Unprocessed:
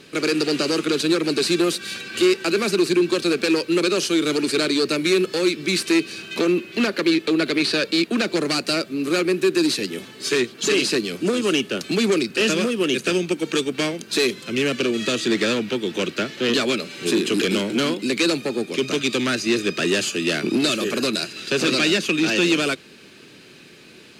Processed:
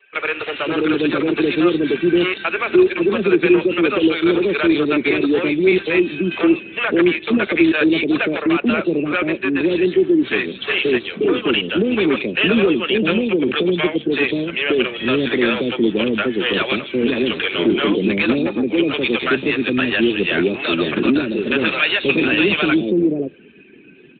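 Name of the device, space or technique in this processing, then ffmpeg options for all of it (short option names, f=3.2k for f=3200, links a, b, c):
mobile call with aggressive noise cancelling: -filter_complex "[0:a]highpass=f=180:p=1,acrossover=split=530|4200[a][b][c];[c]adelay=160[d];[a]adelay=530[e];[e][b][d]amix=inputs=3:normalize=0,afftdn=nr=16:nf=-45,volume=7dB" -ar 8000 -c:a libopencore_amrnb -b:a 12200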